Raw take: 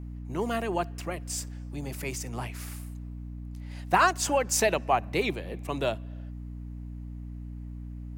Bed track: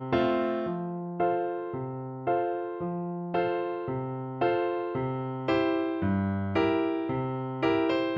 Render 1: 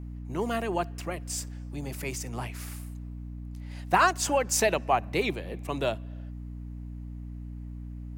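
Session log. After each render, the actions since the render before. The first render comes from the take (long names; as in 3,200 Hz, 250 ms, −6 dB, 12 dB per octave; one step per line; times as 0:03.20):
no processing that can be heard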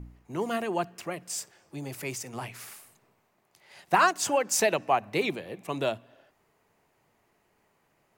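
hum removal 60 Hz, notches 5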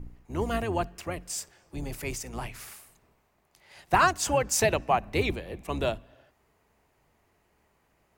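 sub-octave generator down 2 octaves, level +1 dB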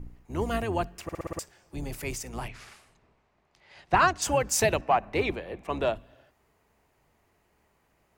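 0:01.03: stutter in place 0.06 s, 6 plays
0:02.48–0:04.22: low-pass filter 4,900 Hz
0:04.81–0:05.96: mid-hump overdrive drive 11 dB, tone 1,300 Hz, clips at −10.5 dBFS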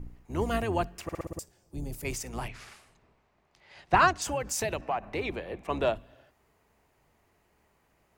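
0:01.25–0:02.05: parametric band 1,800 Hz −13 dB 2.8 octaves
0:04.21–0:05.36: downward compressor 2 to 1, threshold −32 dBFS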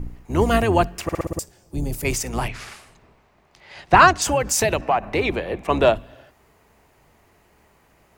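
level +11 dB
brickwall limiter −2 dBFS, peak gain reduction 2.5 dB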